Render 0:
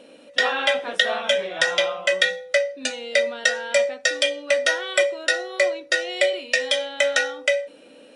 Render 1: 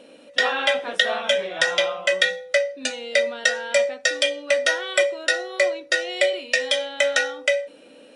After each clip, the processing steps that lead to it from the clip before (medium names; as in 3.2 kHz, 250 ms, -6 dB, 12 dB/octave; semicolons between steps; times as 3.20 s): no audible change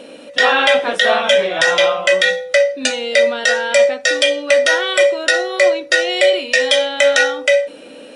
loudness maximiser +12 dB; trim -1 dB